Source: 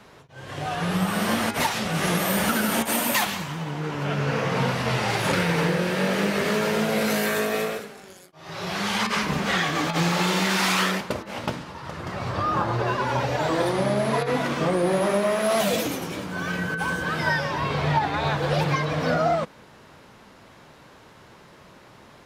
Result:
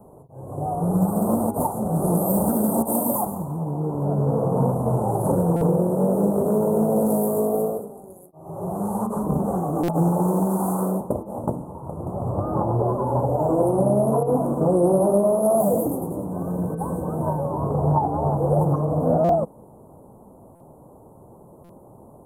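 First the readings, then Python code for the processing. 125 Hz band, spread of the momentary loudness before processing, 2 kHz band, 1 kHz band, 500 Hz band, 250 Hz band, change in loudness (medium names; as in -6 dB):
+4.5 dB, 9 LU, under -25 dB, 0.0 dB, +4.5 dB, +4.5 dB, +2.0 dB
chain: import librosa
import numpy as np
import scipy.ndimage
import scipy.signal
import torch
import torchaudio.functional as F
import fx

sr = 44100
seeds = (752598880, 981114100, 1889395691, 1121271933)

y = scipy.signal.sosfilt(scipy.signal.cheby2(4, 50, [1700.0, 5400.0], 'bandstop', fs=sr, output='sos'), x)
y = fx.buffer_glitch(y, sr, at_s=(5.56, 9.83, 19.24, 20.55, 21.64), block=256, repeats=8)
y = fx.doppler_dist(y, sr, depth_ms=0.2)
y = F.gain(torch.from_numpy(y), 4.5).numpy()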